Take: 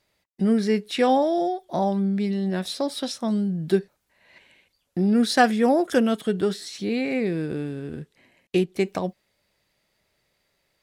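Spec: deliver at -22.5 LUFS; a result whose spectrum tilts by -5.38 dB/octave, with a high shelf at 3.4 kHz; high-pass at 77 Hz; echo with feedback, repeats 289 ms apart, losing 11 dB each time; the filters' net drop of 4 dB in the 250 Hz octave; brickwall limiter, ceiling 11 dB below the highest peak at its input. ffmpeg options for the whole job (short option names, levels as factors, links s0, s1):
-af "highpass=77,equalizer=f=250:t=o:g=-5,highshelf=f=3400:g=-8.5,alimiter=limit=0.126:level=0:latency=1,aecho=1:1:289|578|867:0.282|0.0789|0.0221,volume=2"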